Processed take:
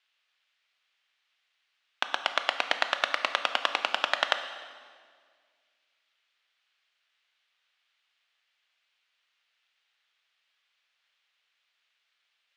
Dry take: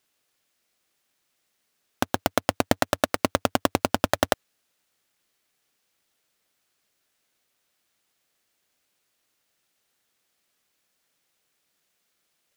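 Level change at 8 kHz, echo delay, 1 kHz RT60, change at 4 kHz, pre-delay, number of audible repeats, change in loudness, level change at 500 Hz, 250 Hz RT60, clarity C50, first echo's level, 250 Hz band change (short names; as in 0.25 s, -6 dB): -12.5 dB, none, 1.7 s, +3.0 dB, 14 ms, none, -2.5 dB, -10.0 dB, 2.2 s, 9.0 dB, none, -23.0 dB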